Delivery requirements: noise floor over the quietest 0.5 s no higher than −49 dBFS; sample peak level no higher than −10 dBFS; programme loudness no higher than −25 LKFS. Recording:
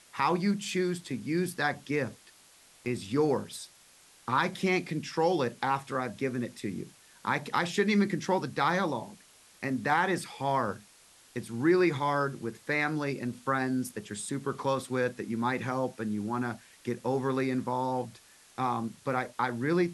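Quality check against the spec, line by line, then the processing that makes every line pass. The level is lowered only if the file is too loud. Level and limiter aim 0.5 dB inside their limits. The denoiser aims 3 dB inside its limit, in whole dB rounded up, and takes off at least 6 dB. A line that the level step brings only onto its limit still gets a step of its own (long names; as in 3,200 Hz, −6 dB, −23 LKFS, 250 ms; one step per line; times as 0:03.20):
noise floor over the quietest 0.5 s −58 dBFS: in spec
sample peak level −12.0 dBFS: in spec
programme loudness −30.5 LKFS: in spec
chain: no processing needed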